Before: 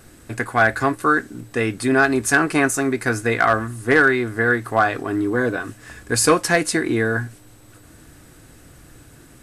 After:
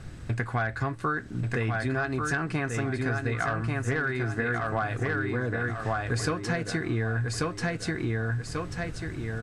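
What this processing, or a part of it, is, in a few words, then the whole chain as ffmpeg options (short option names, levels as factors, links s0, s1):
jukebox: -af "lowpass=5300,lowshelf=f=200:t=q:w=1.5:g=8,aecho=1:1:1138|2276|3414|4552:0.596|0.161|0.0434|0.0117,acompressor=threshold=0.0501:ratio=6"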